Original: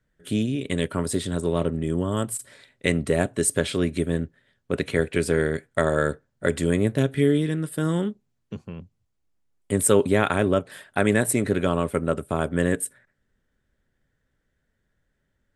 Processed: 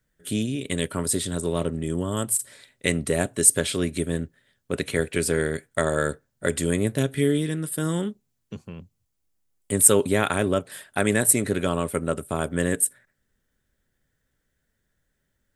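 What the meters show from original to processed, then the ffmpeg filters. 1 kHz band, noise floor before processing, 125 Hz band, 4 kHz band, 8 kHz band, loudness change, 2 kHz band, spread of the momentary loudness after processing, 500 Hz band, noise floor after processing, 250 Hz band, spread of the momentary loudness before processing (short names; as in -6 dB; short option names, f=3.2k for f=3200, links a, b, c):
-1.5 dB, -74 dBFS, -2.0 dB, +2.0 dB, +7.5 dB, +0.5 dB, -0.5 dB, 12 LU, -2.0 dB, -75 dBFS, -2.0 dB, 10 LU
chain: -af "crystalizer=i=2:c=0,volume=-2dB"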